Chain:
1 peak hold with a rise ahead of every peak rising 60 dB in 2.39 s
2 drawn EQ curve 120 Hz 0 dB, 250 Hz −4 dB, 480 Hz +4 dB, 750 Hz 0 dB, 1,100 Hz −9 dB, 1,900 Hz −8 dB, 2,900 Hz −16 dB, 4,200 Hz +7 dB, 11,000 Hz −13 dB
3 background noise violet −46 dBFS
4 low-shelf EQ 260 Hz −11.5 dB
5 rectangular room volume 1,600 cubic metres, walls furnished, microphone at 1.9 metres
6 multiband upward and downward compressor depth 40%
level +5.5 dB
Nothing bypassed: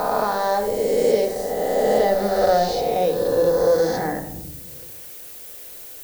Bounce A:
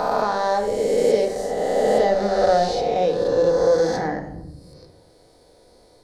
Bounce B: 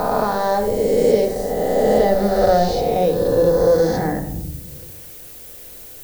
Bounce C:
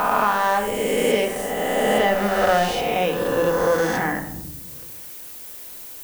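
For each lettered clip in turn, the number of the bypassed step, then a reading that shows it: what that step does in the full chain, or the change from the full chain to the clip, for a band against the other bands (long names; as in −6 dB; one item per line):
3, 8 kHz band −3.0 dB
4, 125 Hz band +7.5 dB
2, change in momentary loudness spread −1 LU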